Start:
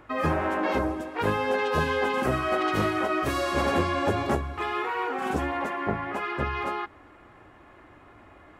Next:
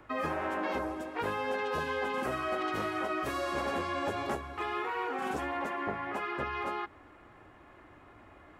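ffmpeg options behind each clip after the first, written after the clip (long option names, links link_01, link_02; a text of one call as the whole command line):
ffmpeg -i in.wav -filter_complex "[0:a]acrossover=split=230|550|2100[link_01][link_02][link_03][link_04];[link_01]acompressor=threshold=-43dB:ratio=4[link_05];[link_02]acompressor=threshold=-35dB:ratio=4[link_06];[link_03]acompressor=threshold=-30dB:ratio=4[link_07];[link_04]acompressor=threshold=-41dB:ratio=4[link_08];[link_05][link_06][link_07][link_08]amix=inputs=4:normalize=0,volume=-3.5dB" out.wav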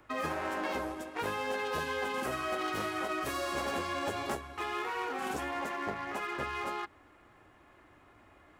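ffmpeg -i in.wav -filter_complex "[0:a]highshelf=frequency=3600:gain=8.5,aeval=exprs='0.106*(cos(1*acos(clip(val(0)/0.106,-1,1)))-cos(1*PI/2))+0.0106*(cos(3*acos(clip(val(0)/0.106,-1,1)))-cos(3*PI/2))+0.00531*(cos(7*acos(clip(val(0)/0.106,-1,1)))-cos(7*PI/2))':channel_layout=same,asplit=2[link_01][link_02];[link_02]aeval=exprs='0.0178*(abs(mod(val(0)/0.0178+3,4)-2)-1)':channel_layout=same,volume=-5dB[link_03];[link_01][link_03]amix=inputs=2:normalize=0" out.wav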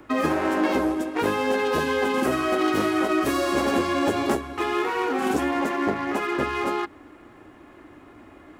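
ffmpeg -i in.wav -af "equalizer=frequency=290:width=1.2:gain=10,volume=8dB" out.wav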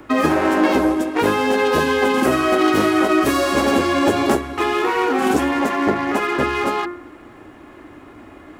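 ffmpeg -i in.wav -af "bandreject=frequency=175.8:width_type=h:width=4,bandreject=frequency=351.6:width_type=h:width=4,bandreject=frequency=527.4:width_type=h:width=4,bandreject=frequency=703.2:width_type=h:width=4,bandreject=frequency=879:width_type=h:width=4,bandreject=frequency=1054.8:width_type=h:width=4,bandreject=frequency=1230.6:width_type=h:width=4,bandreject=frequency=1406.4:width_type=h:width=4,bandreject=frequency=1582.2:width_type=h:width=4,bandreject=frequency=1758:width_type=h:width=4,bandreject=frequency=1933.8:width_type=h:width=4,bandreject=frequency=2109.6:width_type=h:width=4,bandreject=frequency=2285.4:width_type=h:width=4,bandreject=frequency=2461.2:width_type=h:width=4,bandreject=frequency=2637:width_type=h:width=4,volume=6.5dB" out.wav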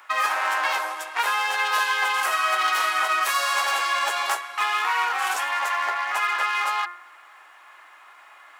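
ffmpeg -i in.wav -af "highpass=frequency=910:width=0.5412,highpass=frequency=910:width=1.3066" out.wav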